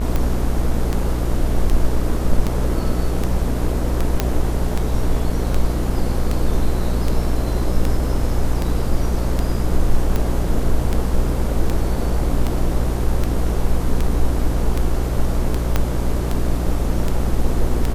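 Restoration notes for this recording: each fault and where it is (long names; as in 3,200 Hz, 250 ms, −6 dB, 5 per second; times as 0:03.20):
mains buzz 60 Hz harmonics 38 −22 dBFS
scratch tick 78 rpm −8 dBFS
0:04.20: click −3 dBFS
0:15.76: click −4 dBFS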